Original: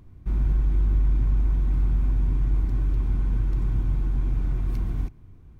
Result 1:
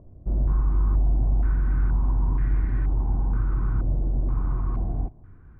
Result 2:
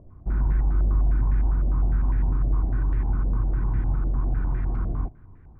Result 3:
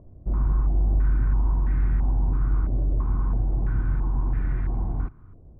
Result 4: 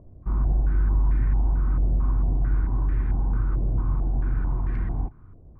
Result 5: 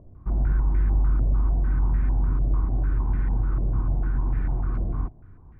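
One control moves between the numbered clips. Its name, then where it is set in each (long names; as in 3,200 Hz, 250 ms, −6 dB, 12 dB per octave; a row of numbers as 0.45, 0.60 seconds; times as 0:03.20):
low-pass on a step sequencer, speed: 2.1, 9.9, 3, 4.5, 6.7 Hertz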